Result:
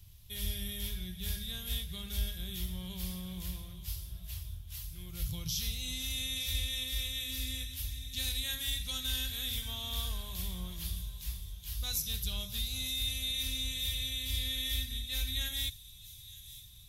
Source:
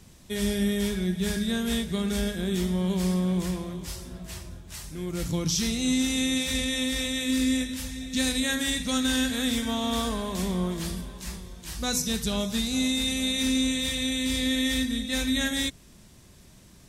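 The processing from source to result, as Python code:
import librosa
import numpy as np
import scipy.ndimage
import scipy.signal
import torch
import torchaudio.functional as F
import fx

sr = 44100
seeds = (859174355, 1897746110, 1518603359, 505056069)

p1 = fx.curve_eq(x, sr, hz=(110.0, 240.0, 990.0, 1800.0, 3200.0, 8400.0, 12000.0), db=(0, -27, -17, -16, -4, -13, 4))
y = p1 + fx.echo_wet_highpass(p1, sr, ms=915, feedback_pct=63, hz=4700.0, wet_db=-12.0, dry=0)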